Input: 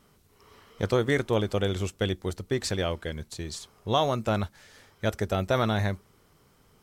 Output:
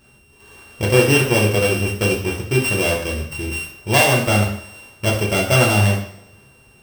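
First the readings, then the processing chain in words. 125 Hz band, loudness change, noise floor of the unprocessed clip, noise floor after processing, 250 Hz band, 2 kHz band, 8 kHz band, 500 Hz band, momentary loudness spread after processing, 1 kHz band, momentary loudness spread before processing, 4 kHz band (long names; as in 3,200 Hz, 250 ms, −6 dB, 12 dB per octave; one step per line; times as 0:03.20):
+11.0 dB, +11.0 dB, −62 dBFS, −52 dBFS, +9.0 dB, +15.5 dB, +16.5 dB, +8.5 dB, 12 LU, +7.5 dB, 12 LU, +12.0 dB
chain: samples sorted by size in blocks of 16 samples
coupled-rooms reverb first 0.59 s, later 1.6 s, from −22 dB, DRR −3 dB
level +4.5 dB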